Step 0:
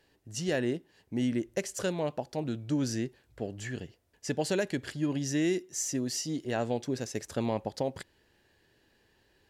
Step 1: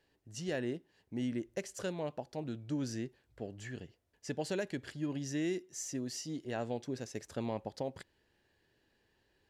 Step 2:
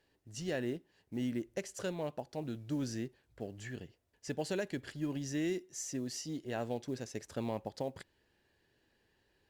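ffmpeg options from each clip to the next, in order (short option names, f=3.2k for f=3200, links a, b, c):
-af "highshelf=f=7.7k:g=-5,volume=-6.5dB"
-af "acrusher=bits=8:mode=log:mix=0:aa=0.000001" -ar 48000 -c:a libopus -b:a 64k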